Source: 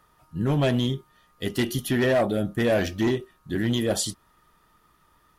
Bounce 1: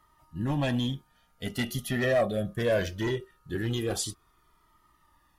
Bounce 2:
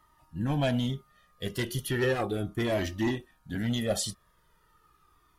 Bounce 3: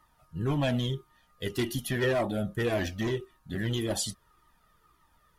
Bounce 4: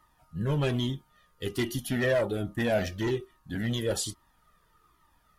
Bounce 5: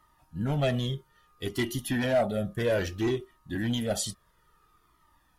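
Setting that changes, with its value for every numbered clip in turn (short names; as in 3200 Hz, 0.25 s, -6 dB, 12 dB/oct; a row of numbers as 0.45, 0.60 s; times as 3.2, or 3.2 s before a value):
cascading flanger, rate: 0.21, 0.36, 1.8, 1.2, 0.6 Hz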